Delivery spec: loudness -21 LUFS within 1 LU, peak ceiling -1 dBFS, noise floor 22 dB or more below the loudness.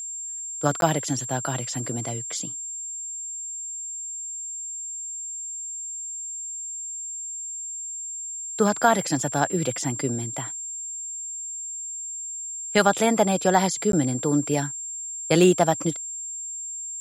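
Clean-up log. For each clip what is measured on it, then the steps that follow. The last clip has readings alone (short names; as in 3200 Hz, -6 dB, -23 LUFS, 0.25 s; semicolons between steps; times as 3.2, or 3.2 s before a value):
dropouts 2; longest dropout 12 ms; steady tone 7400 Hz; tone level -31 dBFS; loudness -26.0 LUFS; peak -4.5 dBFS; loudness target -21.0 LUFS
-> interpolate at 0.81/13.92, 12 ms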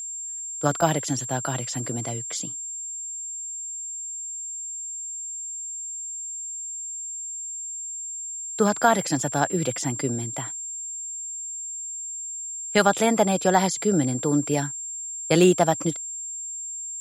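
dropouts 0; steady tone 7400 Hz; tone level -31 dBFS
-> notch 7400 Hz, Q 30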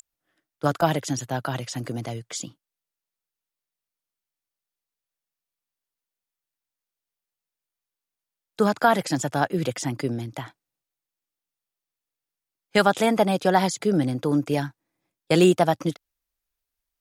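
steady tone none; loudness -23.5 LUFS; peak -5.0 dBFS; loudness target -21.0 LUFS
-> gain +2.5 dB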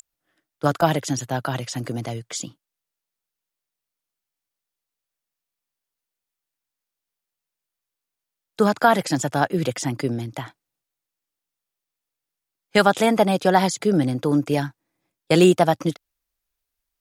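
loudness -21.0 LUFS; peak -2.5 dBFS; noise floor -86 dBFS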